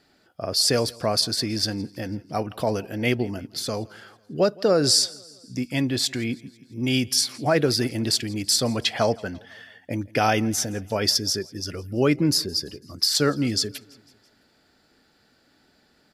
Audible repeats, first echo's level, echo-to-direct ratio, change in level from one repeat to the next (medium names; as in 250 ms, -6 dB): 3, -24.0 dB, -22.5 dB, -5.0 dB